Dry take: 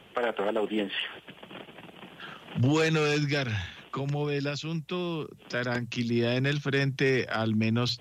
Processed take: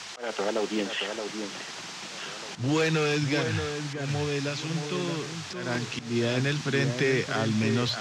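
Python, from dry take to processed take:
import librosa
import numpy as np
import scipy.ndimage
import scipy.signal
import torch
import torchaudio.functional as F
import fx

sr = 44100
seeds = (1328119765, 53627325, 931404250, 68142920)

y = fx.dmg_noise_band(x, sr, seeds[0], low_hz=680.0, high_hz=6500.0, level_db=-41.0)
y = fx.auto_swell(y, sr, attack_ms=177.0)
y = fx.echo_alternate(y, sr, ms=623, hz=1900.0, feedback_pct=50, wet_db=-6.5)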